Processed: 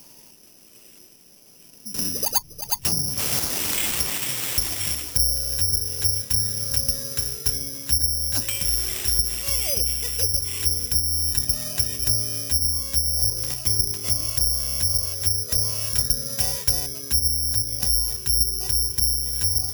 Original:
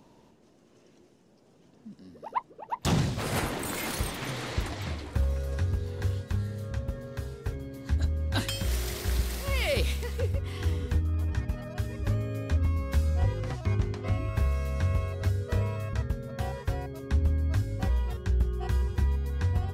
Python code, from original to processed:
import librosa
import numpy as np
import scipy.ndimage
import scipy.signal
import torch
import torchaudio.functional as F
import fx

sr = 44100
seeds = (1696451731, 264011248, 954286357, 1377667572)

y = fx.env_lowpass_down(x, sr, base_hz=690.0, full_db=-21.5)
y = fx.peak_eq(y, sr, hz=2800.0, db=10.5, octaves=0.9)
y = fx.rider(y, sr, range_db=4, speed_s=0.5)
y = (np.kron(y[::8], np.eye(8)[0]) * 8)[:len(y)]
y = fx.band_squash(y, sr, depth_pct=100, at=(1.94, 4.18))
y = y * 10.0 ** (-4.0 / 20.0)